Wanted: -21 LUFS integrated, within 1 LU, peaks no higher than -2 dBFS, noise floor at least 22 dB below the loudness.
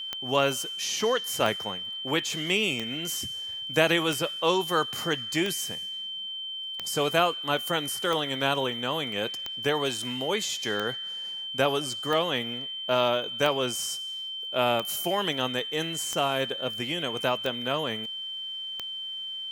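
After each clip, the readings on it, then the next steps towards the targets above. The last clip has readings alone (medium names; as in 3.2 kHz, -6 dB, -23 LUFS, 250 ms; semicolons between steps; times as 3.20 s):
clicks found 15; steady tone 3.1 kHz; tone level -33 dBFS; loudness -27.5 LUFS; peak level -5.5 dBFS; loudness target -21.0 LUFS
-> de-click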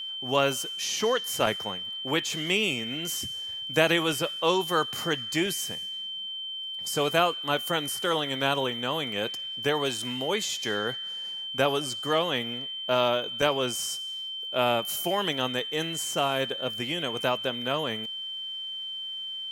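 clicks found 0; steady tone 3.1 kHz; tone level -33 dBFS
-> band-stop 3.1 kHz, Q 30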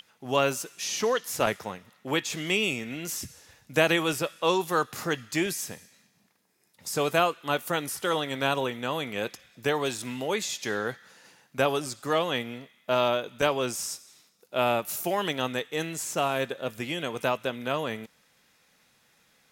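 steady tone not found; loudness -28.5 LUFS; peak level -6.0 dBFS; loudness target -21.0 LUFS
-> trim +7.5 dB; peak limiter -2 dBFS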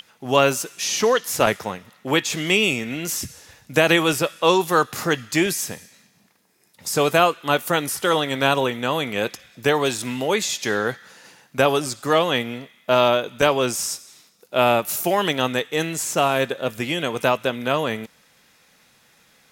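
loudness -21.0 LUFS; peak level -2.0 dBFS; noise floor -58 dBFS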